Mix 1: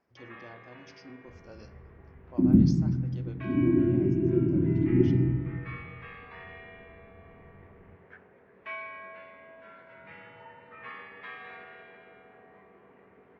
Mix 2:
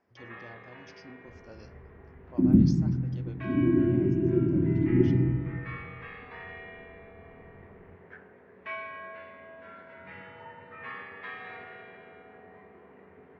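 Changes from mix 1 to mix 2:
speech: send −6.0 dB
first sound: send +11.0 dB

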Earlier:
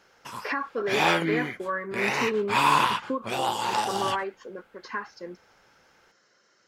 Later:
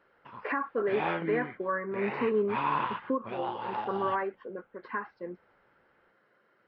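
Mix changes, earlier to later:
background −7.0 dB
master: add Gaussian smoothing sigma 3.4 samples

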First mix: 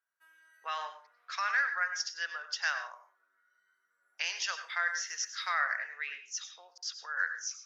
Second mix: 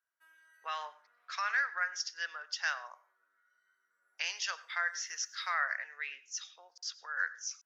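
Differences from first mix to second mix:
speech: send −10.5 dB
background: send off

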